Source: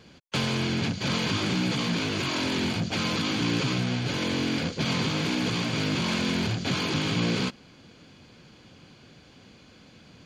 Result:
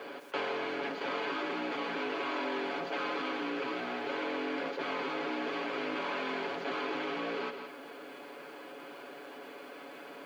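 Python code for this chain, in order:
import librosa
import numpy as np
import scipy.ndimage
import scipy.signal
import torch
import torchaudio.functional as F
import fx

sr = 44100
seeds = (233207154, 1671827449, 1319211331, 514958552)

p1 = (np.mod(10.0 ** (28.0 / 20.0) * x + 1.0, 2.0) - 1.0) / 10.0 ** (28.0 / 20.0)
p2 = x + (p1 * librosa.db_to_amplitude(-9.0))
p3 = scipy.signal.sosfilt(scipy.signal.butter(2, 1700.0, 'lowpass', fs=sr, output='sos'), p2)
p4 = p3 + 0.66 * np.pad(p3, (int(7.1 * sr / 1000.0), 0))[:len(p3)]
p5 = p4 + fx.echo_single(p4, sr, ms=167, db=-14.5, dry=0)
p6 = fx.rider(p5, sr, range_db=10, speed_s=0.5)
p7 = fx.quant_dither(p6, sr, seeds[0], bits=12, dither='none')
p8 = scipy.signal.sosfilt(scipy.signal.butter(4, 360.0, 'highpass', fs=sr, output='sos'), p7)
p9 = fx.env_flatten(p8, sr, amount_pct=50)
y = p9 * librosa.db_to_amplitude(-5.5)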